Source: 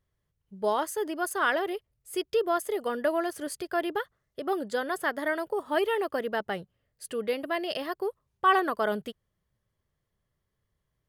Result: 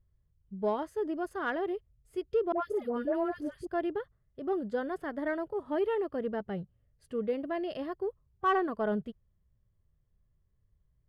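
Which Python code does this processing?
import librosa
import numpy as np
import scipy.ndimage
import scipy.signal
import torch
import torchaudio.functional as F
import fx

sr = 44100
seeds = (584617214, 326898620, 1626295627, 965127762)

p1 = fx.riaa(x, sr, side='playback')
p2 = fx.hpss(p1, sr, part='percussive', gain_db=-7)
p3 = fx.dispersion(p2, sr, late='highs', ms=106.0, hz=970.0, at=(2.52, 3.67))
p4 = 10.0 ** (-22.5 / 20.0) * np.tanh(p3 / 10.0 ** (-22.5 / 20.0))
p5 = p3 + F.gain(torch.from_numpy(p4), -11.0).numpy()
y = F.gain(torch.from_numpy(p5), -6.5).numpy()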